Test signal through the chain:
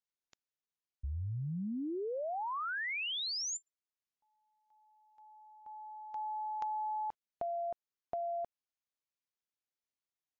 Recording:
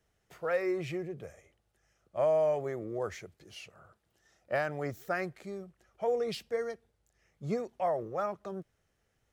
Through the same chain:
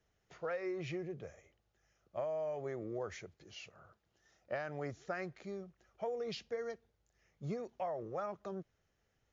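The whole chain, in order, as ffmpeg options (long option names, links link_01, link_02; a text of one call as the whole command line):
ffmpeg -i in.wav -af "acompressor=threshold=-32dB:ratio=16,volume=-2.5dB" -ar 16000 -c:a libmp3lame -b:a 56k out.mp3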